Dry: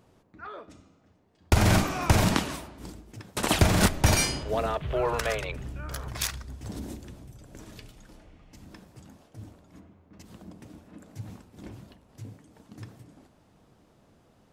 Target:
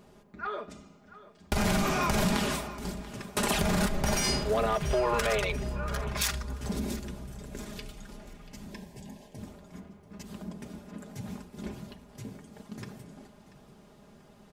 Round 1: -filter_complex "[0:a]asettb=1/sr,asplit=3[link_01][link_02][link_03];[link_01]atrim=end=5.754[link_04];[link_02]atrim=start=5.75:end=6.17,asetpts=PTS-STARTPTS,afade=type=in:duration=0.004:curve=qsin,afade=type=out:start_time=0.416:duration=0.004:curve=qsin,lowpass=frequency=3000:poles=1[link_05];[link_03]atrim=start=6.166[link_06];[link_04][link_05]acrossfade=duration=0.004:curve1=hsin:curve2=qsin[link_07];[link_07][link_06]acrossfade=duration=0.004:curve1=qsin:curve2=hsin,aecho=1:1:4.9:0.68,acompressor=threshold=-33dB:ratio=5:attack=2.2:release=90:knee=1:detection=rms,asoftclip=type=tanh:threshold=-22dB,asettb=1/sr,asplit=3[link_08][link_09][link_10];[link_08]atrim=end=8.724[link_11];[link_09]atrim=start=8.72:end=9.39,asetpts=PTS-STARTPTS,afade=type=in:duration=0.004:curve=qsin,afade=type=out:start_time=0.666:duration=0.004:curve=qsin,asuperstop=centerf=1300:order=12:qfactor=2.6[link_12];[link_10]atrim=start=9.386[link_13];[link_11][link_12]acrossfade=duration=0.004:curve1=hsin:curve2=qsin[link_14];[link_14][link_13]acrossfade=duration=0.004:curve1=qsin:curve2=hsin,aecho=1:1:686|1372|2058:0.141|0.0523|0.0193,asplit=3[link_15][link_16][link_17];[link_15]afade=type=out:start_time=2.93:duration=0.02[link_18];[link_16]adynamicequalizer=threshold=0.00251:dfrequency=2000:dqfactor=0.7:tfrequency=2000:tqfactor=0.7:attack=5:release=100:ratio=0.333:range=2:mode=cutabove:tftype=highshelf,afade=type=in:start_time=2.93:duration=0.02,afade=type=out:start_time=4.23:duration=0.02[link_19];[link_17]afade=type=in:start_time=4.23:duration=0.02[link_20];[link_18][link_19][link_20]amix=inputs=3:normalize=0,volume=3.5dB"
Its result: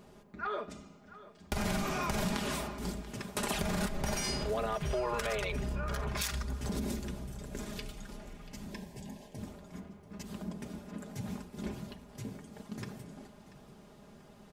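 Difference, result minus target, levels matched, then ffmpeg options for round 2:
downward compressor: peak gain reduction +7.5 dB
-filter_complex "[0:a]asettb=1/sr,asplit=3[link_01][link_02][link_03];[link_01]atrim=end=5.754[link_04];[link_02]atrim=start=5.75:end=6.17,asetpts=PTS-STARTPTS,afade=type=in:duration=0.004:curve=qsin,afade=type=out:start_time=0.416:duration=0.004:curve=qsin,lowpass=frequency=3000:poles=1[link_05];[link_03]atrim=start=6.166[link_06];[link_04][link_05]acrossfade=duration=0.004:curve1=hsin:curve2=qsin[link_07];[link_07][link_06]acrossfade=duration=0.004:curve1=qsin:curve2=hsin,aecho=1:1:4.9:0.68,acompressor=threshold=-23.5dB:ratio=5:attack=2.2:release=90:knee=1:detection=rms,asoftclip=type=tanh:threshold=-22dB,asettb=1/sr,asplit=3[link_08][link_09][link_10];[link_08]atrim=end=8.724[link_11];[link_09]atrim=start=8.72:end=9.39,asetpts=PTS-STARTPTS,afade=type=in:duration=0.004:curve=qsin,afade=type=out:start_time=0.666:duration=0.004:curve=qsin,asuperstop=centerf=1300:order=12:qfactor=2.6[link_12];[link_10]atrim=start=9.386[link_13];[link_11][link_12]acrossfade=duration=0.004:curve1=hsin:curve2=qsin[link_14];[link_14][link_13]acrossfade=duration=0.004:curve1=qsin:curve2=hsin,aecho=1:1:686|1372|2058:0.141|0.0523|0.0193,asplit=3[link_15][link_16][link_17];[link_15]afade=type=out:start_time=2.93:duration=0.02[link_18];[link_16]adynamicequalizer=threshold=0.00251:dfrequency=2000:dqfactor=0.7:tfrequency=2000:tqfactor=0.7:attack=5:release=100:ratio=0.333:range=2:mode=cutabove:tftype=highshelf,afade=type=in:start_time=2.93:duration=0.02,afade=type=out:start_time=4.23:duration=0.02[link_19];[link_17]afade=type=in:start_time=4.23:duration=0.02[link_20];[link_18][link_19][link_20]amix=inputs=3:normalize=0,volume=3.5dB"

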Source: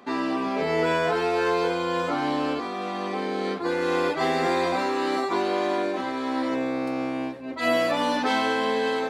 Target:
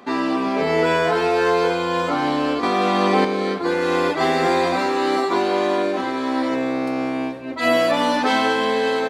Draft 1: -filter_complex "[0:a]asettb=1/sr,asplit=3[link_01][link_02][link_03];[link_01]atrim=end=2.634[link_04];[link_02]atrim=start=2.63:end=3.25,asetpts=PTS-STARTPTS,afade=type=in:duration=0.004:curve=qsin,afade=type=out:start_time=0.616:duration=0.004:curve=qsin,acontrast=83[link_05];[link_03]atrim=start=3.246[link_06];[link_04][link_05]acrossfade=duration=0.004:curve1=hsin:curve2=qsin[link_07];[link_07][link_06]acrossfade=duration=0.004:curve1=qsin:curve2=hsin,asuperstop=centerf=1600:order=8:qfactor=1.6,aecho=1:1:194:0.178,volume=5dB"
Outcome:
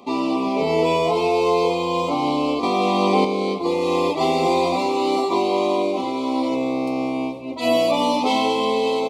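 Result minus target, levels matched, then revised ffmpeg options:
2,000 Hz band −7.0 dB
-filter_complex "[0:a]asettb=1/sr,asplit=3[link_01][link_02][link_03];[link_01]atrim=end=2.634[link_04];[link_02]atrim=start=2.63:end=3.25,asetpts=PTS-STARTPTS,afade=type=in:duration=0.004:curve=qsin,afade=type=out:start_time=0.616:duration=0.004:curve=qsin,acontrast=83[link_05];[link_03]atrim=start=3.246[link_06];[link_04][link_05]acrossfade=duration=0.004:curve1=hsin:curve2=qsin[link_07];[link_07][link_06]acrossfade=duration=0.004:curve1=qsin:curve2=hsin,aecho=1:1:194:0.178,volume=5dB"

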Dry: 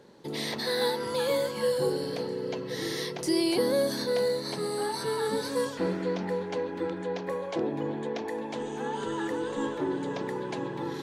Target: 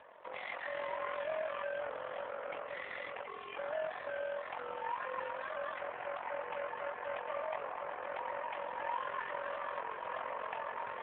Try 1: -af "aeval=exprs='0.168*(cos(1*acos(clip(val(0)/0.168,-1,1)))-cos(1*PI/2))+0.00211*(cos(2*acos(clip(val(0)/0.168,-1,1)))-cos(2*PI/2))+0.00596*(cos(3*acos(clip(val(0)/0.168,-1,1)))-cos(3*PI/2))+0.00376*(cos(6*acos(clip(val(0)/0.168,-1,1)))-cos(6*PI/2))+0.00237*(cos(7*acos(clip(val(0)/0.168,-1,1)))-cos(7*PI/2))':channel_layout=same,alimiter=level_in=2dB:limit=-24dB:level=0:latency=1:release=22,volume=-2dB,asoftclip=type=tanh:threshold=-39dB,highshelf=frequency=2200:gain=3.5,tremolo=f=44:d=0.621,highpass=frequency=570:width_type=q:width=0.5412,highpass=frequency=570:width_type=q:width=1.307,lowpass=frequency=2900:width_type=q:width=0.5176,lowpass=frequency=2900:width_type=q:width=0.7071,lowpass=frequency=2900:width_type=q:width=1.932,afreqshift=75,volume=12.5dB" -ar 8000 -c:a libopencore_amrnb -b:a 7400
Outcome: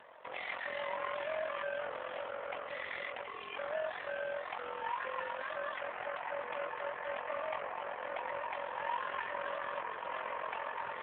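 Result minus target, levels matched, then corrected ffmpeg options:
4,000 Hz band +3.0 dB
-af "aeval=exprs='0.168*(cos(1*acos(clip(val(0)/0.168,-1,1)))-cos(1*PI/2))+0.00211*(cos(2*acos(clip(val(0)/0.168,-1,1)))-cos(2*PI/2))+0.00596*(cos(3*acos(clip(val(0)/0.168,-1,1)))-cos(3*PI/2))+0.00376*(cos(6*acos(clip(val(0)/0.168,-1,1)))-cos(6*PI/2))+0.00237*(cos(7*acos(clip(val(0)/0.168,-1,1)))-cos(7*PI/2))':channel_layout=same,alimiter=level_in=2dB:limit=-24dB:level=0:latency=1:release=22,volume=-2dB,asoftclip=type=tanh:threshold=-39dB,highshelf=frequency=2200:gain=-3,tremolo=f=44:d=0.621,highpass=frequency=570:width_type=q:width=0.5412,highpass=frequency=570:width_type=q:width=1.307,lowpass=frequency=2900:width_type=q:width=0.5176,lowpass=frequency=2900:width_type=q:width=0.7071,lowpass=frequency=2900:width_type=q:width=1.932,afreqshift=75,volume=12.5dB" -ar 8000 -c:a libopencore_amrnb -b:a 7400

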